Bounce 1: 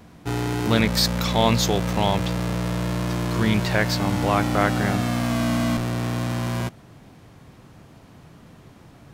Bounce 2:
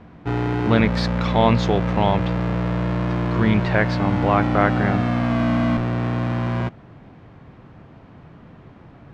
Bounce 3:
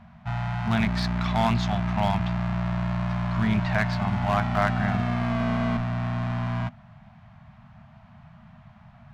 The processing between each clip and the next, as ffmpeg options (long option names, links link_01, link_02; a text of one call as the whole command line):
ffmpeg -i in.wav -af "lowpass=2300,volume=3dB" out.wav
ffmpeg -i in.wav -af "aeval=exprs='clip(val(0),-1,0.168)':channel_layout=same,afftfilt=real='re*(1-between(b*sr/4096,240,600))':imag='im*(1-between(b*sr/4096,240,600))':win_size=4096:overlap=0.75,aeval=exprs='0.708*(cos(1*acos(clip(val(0)/0.708,-1,1)))-cos(1*PI/2))+0.178*(cos(2*acos(clip(val(0)/0.708,-1,1)))-cos(2*PI/2))+0.0891*(cos(3*acos(clip(val(0)/0.708,-1,1)))-cos(3*PI/2))':channel_layout=same" out.wav